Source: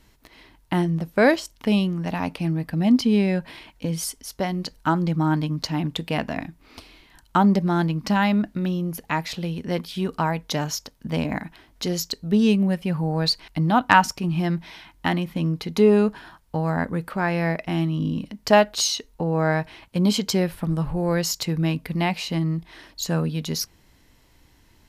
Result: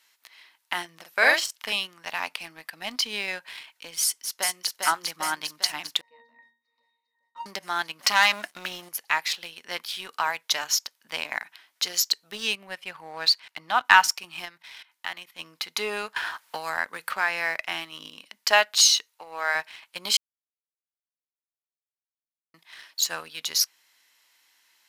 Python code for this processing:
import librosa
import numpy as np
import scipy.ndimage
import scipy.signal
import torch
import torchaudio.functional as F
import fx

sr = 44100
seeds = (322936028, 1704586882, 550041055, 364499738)

y = fx.doubler(x, sr, ms=45.0, db=-4, at=(0.95, 1.73))
y = fx.echo_throw(y, sr, start_s=4.02, length_s=0.77, ms=400, feedback_pct=70, wet_db=-3.0)
y = fx.octave_resonator(y, sr, note='A#', decay_s=0.37, at=(6.01, 7.46))
y = fx.leveller(y, sr, passes=2, at=(7.99, 8.89))
y = fx.high_shelf(y, sr, hz=6100.0, db=-10.0, at=(12.55, 13.85))
y = fx.level_steps(y, sr, step_db=15, at=(14.44, 15.38), fade=0.02)
y = fx.band_squash(y, sr, depth_pct=70, at=(16.16, 18.1))
y = fx.bessel_highpass(y, sr, hz=590.0, order=2, at=(19.06, 19.55))
y = fx.edit(y, sr, fx.silence(start_s=20.17, length_s=2.37), tone=tone)
y = scipy.signal.sosfilt(scipy.signal.butter(2, 1400.0, 'highpass', fs=sr, output='sos'), y)
y = fx.leveller(y, sr, passes=1)
y = y * 10.0 ** (2.0 / 20.0)